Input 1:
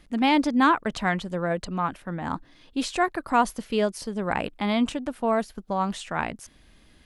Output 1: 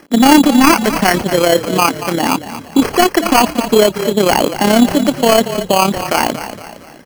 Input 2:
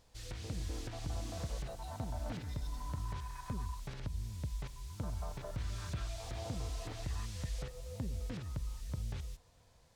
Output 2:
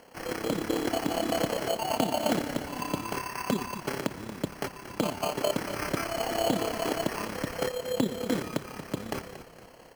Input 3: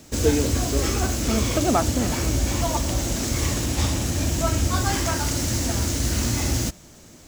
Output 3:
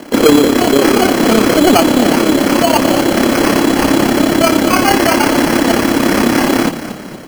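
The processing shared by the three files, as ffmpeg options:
-filter_complex "[0:a]highpass=f=270:w=0.5412,highpass=f=270:w=1.3066,aemphasis=mode=reproduction:type=bsi,bandreject=f=990:w=23,asoftclip=type=hard:threshold=-18dB,tremolo=f=34:d=0.667,acrusher=samples=12:mix=1:aa=0.000001,asoftclip=type=tanh:threshold=-19dB,asplit=5[a][b][c][d][e];[b]adelay=231,afreqshift=-31,volume=-13dB[f];[c]adelay=462,afreqshift=-62,volume=-19.9dB[g];[d]adelay=693,afreqshift=-93,volume=-26.9dB[h];[e]adelay=924,afreqshift=-124,volume=-33.8dB[i];[a][f][g][h][i]amix=inputs=5:normalize=0,alimiter=level_in=22dB:limit=-1dB:release=50:level=0:latency=1,volume=-1dB"

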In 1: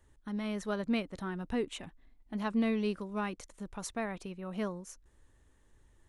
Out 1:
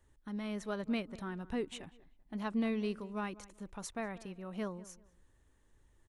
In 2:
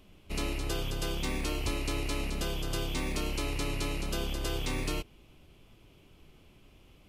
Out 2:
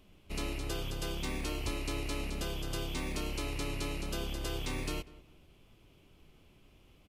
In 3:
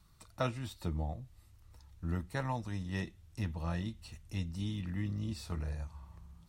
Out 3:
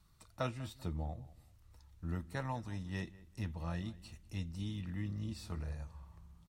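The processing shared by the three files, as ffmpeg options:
-filter_complex "[0:a]asplit=2[a][b];[b]adelay=193,lowpass=f=2.1k:p=1,volume=-18.5dB,asplit=2[c][d];[d]adelay=193,lowpass=f=2.1k:p=1,volume=0.28[e];[a][c][e]amix=inputs=3:normalize=0,volume=-3.5dB"

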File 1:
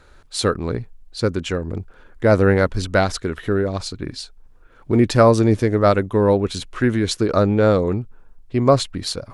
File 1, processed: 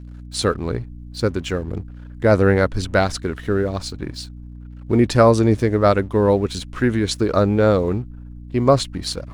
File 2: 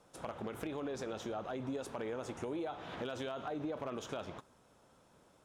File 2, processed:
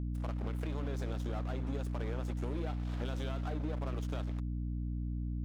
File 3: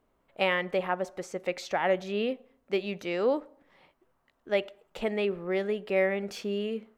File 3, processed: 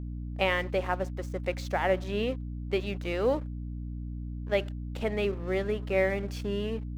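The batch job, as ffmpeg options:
-af "aeval=exprs='sgn(val(0))*max(abs(val(0))-0.00447,0)':c=same,aeval=exprs='val(0)+0.0178*(sin(2*PI*60*n/s)+sin(2*PI*2*60*n/s)/2+sin(2*PI*3*60*n/s)/3+sin(2*PI*4*60*n/s)/4+sin(2*PI*5*60*n/s)/5)':c=same"

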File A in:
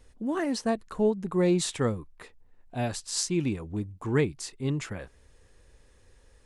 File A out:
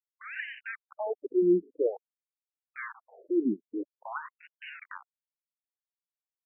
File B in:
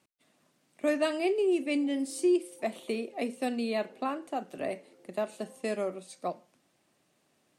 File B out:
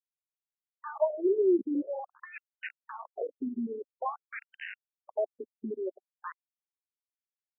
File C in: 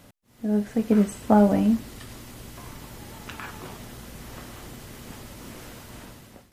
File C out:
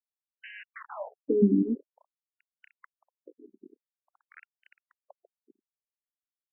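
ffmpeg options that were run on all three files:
-af "aeval=exprs='val(0)*gte(abs(val(0)),0.0299)':c=same,afftfilt=real='re*between(b*sr/1024,290*pow(2200/290,0.5+0.5*sin(2*PI*0.49*pts/sr))/1.41,290*pow(2200/290,0.5+0.5*sin(2*PI*0.49*pts/sr))*1.41)':imag='im*between(b*sr/1024,290*pow(2200/290,0.5+0.5*sin(2*PI*0.49*pts/sr))/1.41,290*pow(2200/290,0.5+0.5*sin(2*PI*0.49*pts/sr))*1.41)':win_size=1024:overlap=0.75,volume=3dB"

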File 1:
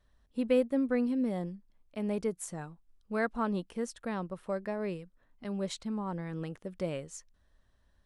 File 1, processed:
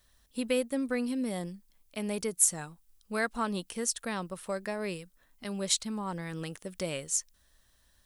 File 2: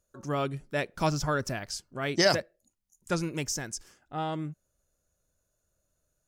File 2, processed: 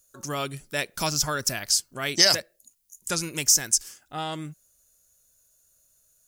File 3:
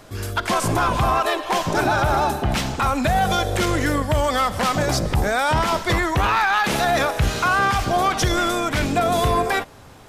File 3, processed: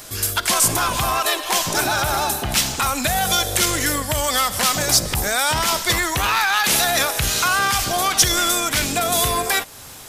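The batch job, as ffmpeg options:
-filter_complex "[0:a]asplit=2[a][b];[b]acompressor=threshold=-30dB:ratio=6,volume=0.5dB[c];[a][c]amix=inputs=2:normalize=0,crystalizer=i=7:c=0,volume=-7dB"

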